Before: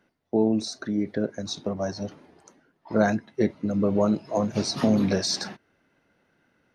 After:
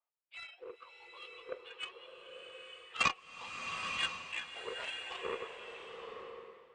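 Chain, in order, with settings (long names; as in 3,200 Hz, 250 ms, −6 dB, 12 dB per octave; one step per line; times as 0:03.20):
frequency axis turned over on the octave scale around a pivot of 1,300 Hz
leveller curve on the samples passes 2
single-sideband voice off tune +76 Hz 460–2,900 Hz
harmonic generator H 2 −42 dB, 3 −10 dB, 5 −38 dB, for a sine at −12.5 dBFS
high-frequency loss of the air 69 metres
slow-attack reverb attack 930 ms, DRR 3.5 dB
level +1 dB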